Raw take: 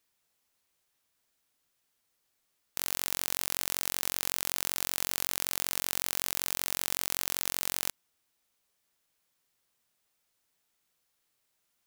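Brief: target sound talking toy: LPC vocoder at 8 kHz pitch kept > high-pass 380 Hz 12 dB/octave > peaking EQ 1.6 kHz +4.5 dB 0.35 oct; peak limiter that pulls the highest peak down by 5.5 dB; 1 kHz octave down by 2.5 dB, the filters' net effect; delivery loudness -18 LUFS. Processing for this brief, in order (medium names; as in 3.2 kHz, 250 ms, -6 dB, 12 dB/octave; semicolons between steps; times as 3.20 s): peaking EQ 1 kHz -4 dB; peak limiter -9.5 dBFS; LPC vocoder at 8 kHz pitch kept; high-pass 380 Hz 12 dB/octave; peaking EQ 1.6 kHz +4.5 dB 0.35 oct; trim +28.5 dB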